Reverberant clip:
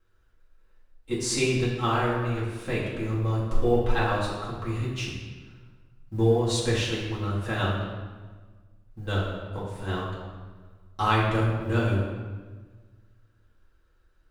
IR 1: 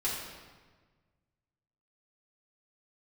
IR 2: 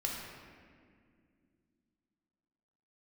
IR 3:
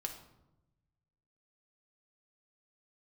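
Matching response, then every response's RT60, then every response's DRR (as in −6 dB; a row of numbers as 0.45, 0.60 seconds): 1; 1.4, 2.2, 0.95 seconds; −8.5, −2.0, 3.5 decibels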